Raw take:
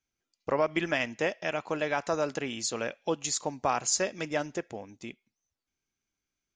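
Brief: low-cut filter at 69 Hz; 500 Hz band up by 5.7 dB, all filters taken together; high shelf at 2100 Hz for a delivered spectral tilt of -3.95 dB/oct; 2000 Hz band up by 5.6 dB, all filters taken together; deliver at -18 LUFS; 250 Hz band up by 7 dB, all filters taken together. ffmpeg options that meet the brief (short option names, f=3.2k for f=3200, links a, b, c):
-af "highpass=69,equalizer=f=250:t=o:g=7.5,equalizer=f=500:t=o:g=5,equalizer=f=2k:t=o:g=8.5,highshelf=f=2.1k:g=-3.5,volume=8dB"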